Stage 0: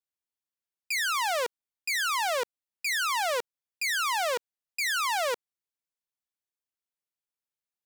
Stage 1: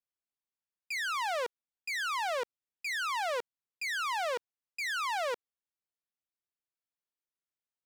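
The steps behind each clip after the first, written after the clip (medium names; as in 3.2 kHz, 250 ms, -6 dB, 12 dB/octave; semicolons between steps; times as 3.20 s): low-pass 3.5 kHz 6 dB/octave; trim -4 dB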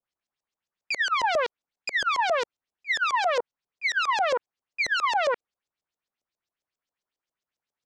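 LFO low-pass saw up 7.4 Hz 520–7200 Hz; trim +6 dB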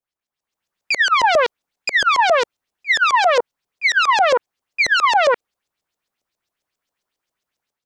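level rider gain up to 9.5 dB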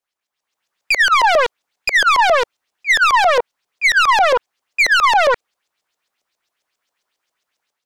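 overdrive pedal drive 12 dB, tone 7.6 kHz, clips at -6.5 dBFS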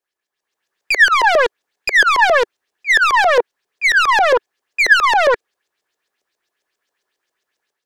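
small resonant body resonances 390/1700 Hz, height 9 dB, ringing for 20 ms; trim -1.5 dB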